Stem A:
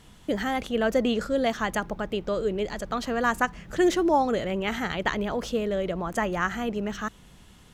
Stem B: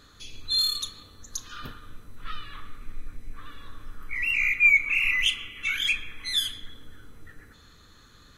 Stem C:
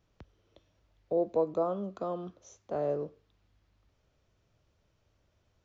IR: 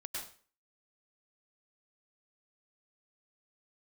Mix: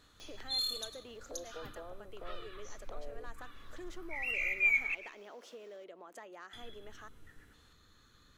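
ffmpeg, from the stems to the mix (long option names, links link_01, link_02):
-filter_complex "[0:a]asoftclip=type=tanh:threshold=-17.5dB,volume=-15.5dB[link_01];[1:a]volume=-11.5dB,asplit=3[link_02][link_03][link_04];[link_02]atrim=end=4.95,asetpts=PTS-STARTPTS,afade=type=out:start_time=4.946:duration=0.004:curve=hsin[link_05];[link_03]atrim=start=4.95:end=6.53,asetpts=PTS-STARTPTS,volume=0[link_06];[link_04]atrim=start=6.53,asetpts=PTS-STARTPTS,afade=type=in:duration=0.004:curve=hsin[link_07];[link_05][link_06][link_07]concat=n=3:v=0:a=1,asplit=2[link_08][link_09];[link_09]volume=-9.5dB[link_10];[2:a]acompressor=mode=upward:threshold=-40dB:ratio=2.5,acompressor=threshold=-57dB:ratio=1.5,adelay=200,volume=2dB[link_11];[link_01][link_11]amix=inputs=2:normalize=0,highpass=frequency=310:width=0.5412,highpass=frequency=310:width=1.3066,acompressor=threshold=-49dB:ratio=2.5,volume=0dB[link_12];[3:a]atrim=start_sample=2205[link_13];[link_10][link_13]afir=irnorm=-1:irlink=0[link_14];[link_08][link_12][link_14]amix=inputs=3:normalize=0"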